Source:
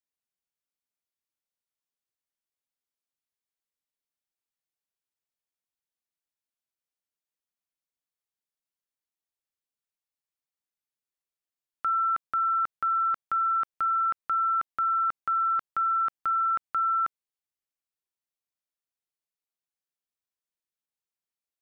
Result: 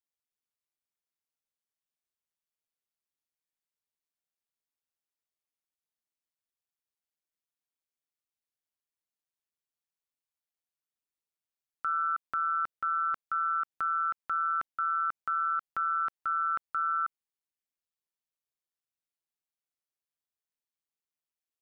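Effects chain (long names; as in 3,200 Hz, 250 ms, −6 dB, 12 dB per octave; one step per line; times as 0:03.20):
amplitude modulation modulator 160 Hz, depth 55%
level −1 dB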